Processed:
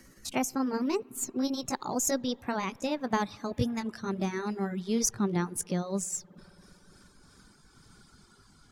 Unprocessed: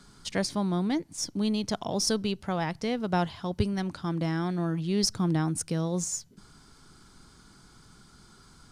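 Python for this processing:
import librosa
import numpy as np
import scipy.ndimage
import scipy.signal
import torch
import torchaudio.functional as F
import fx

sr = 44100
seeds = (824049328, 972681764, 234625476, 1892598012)

y = fx.pitch_glide(x, sr, semitones=5.0, runs='ending unshifted')
y = fx.rev_spring(y, sr, rt60_s=3.1, pass_ms=(58,), chirp_ms=50, drr_db=13.5)
y = fx.dereverb_blind(y, sr, rt60_s=0.75)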